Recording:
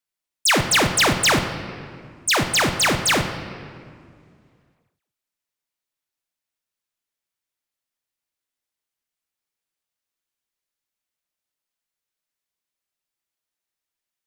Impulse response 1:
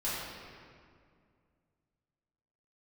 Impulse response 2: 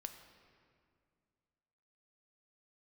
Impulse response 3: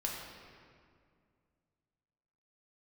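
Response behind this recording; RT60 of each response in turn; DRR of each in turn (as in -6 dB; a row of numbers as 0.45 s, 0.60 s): 2; 2.2 s, 2.2 s, 2.2 s; -10.5 dB, 6.5 dB, -2.5 dB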